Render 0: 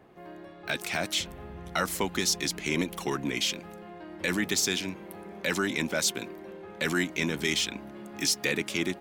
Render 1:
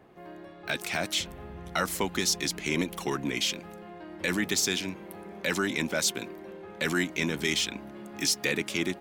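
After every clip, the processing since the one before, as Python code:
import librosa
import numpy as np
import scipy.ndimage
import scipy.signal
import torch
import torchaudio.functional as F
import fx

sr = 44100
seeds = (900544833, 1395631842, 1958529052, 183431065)

y = x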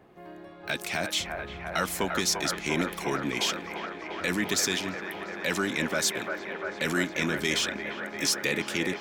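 y = fx.echo_wet_bandpass(x, sr, ms=347, feedback_pct=83, hz=960.0, wet_db=-4.0)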